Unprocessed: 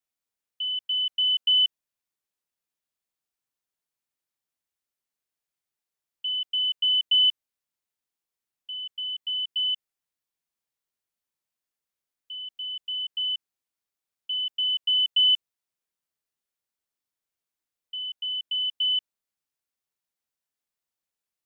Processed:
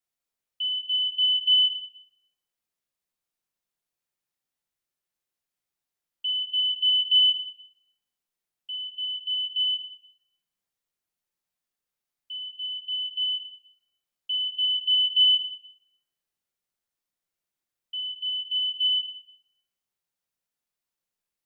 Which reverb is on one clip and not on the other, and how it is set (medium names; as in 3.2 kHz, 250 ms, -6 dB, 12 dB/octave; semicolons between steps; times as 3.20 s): simulated room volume 350 m³, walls mixed, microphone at 0.9 m; trim -1 dB